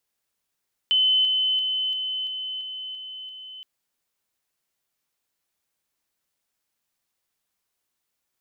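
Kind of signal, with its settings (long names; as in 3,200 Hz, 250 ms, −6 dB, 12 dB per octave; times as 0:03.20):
level staircase 3,040 Hz −16.5 dBFS, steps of −3 dB, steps 8, 0.34 s 0.00 s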